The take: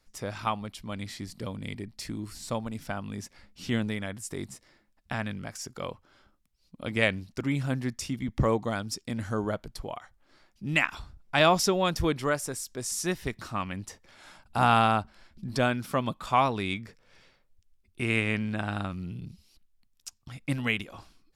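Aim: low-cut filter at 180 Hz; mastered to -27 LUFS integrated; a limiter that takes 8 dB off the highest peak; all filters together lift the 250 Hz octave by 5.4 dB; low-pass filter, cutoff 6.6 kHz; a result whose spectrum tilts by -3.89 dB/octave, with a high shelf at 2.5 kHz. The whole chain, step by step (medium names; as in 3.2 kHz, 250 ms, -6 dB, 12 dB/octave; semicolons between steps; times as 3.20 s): high-pass 180 Hz; low-pass 6.6 kHz; peaking EQ 250 Hz +8 dB; treble shelf 2.5 kHz +8.5 dB; trim +1.5 dB; peak limiter -9.5 dBFS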